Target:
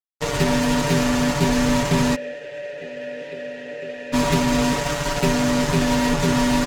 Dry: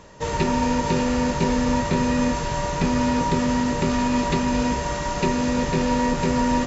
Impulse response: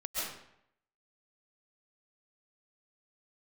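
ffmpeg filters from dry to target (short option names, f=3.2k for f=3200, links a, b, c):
-filter_complex "[0:a]acrusher=bits=3:mix=0:aa=0.5,asplit=3[a][b][c];[a]afade=t=out:st=2.14:d=0.02[d];[b]asplit=3[e][f][g];[e]bandpass=f=530:t=q:w=8,volume=0dB[h];[f]bandpass=f=1.84k:t=q:w=8,volume=-6dB[i];[g]bandpass=f=2.48k:t=q:w=8,volume=-9dB[j];[h][i][j]amix=inputs=3:normalize=0,afade=t=in:st=2.14:d=0.02,afade=t=out:st=4.12:d=0.02[k];[c]afade=t=in:st=4.12:d=0.02[l];[d][k][l]amix=inputs=3:normalize=0,aecho=1:1:7:0.88" -ar 44100 -c:a libvorbis -b:a 96k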